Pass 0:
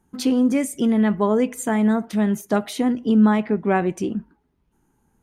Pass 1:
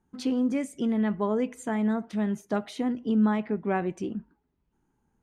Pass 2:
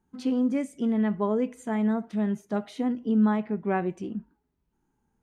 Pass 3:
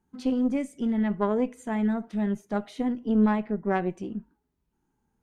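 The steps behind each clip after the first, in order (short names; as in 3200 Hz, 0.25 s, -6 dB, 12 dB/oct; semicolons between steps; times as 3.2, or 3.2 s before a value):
air absorption 57 m; gain -7.5 dB
harmonic-percussive split percussive -7 dB; gain +1 dB
added harmonics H 2 -10 dB, 7 -38 dB, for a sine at -14 dBFS; spectral gain 3.51–3.76, 2100–5000 Hz -15 dB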